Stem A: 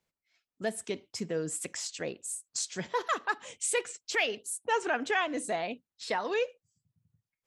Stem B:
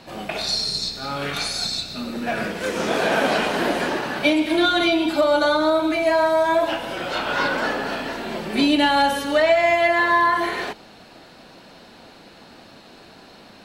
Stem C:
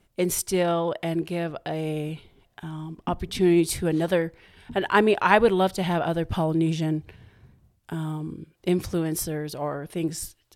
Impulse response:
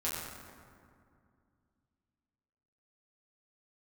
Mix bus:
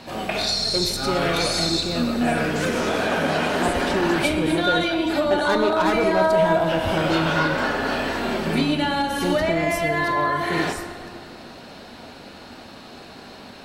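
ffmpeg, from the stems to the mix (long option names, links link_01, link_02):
-filter_complex "[0:a]volume=-7.5dB[link_01];[1:a]acompressor=threshold=-24dB:ratio=6,volume=1dB,asplit=2[link_02][link_03];[link_03]volume=-7dB[link_04];[2:a]highshelf=frequency=6400:gain=-12,asoftclip=type=tanh:threshold=-21.5dB,adelay=550,volume=0.5dB,asplit=2[link_05][link_06];[link_06]volume=-10dB[link_07];[3:a]atrim=start_sample=2205[link_08];[link_04][link_07]amix=inputs=2:normalize=0[link_09];[link_09][link_08]afir=irnorm=-1:irlink=0[link_10];[link_01][link_02][link_05][link_10]amix=inputs=4:normalize=0"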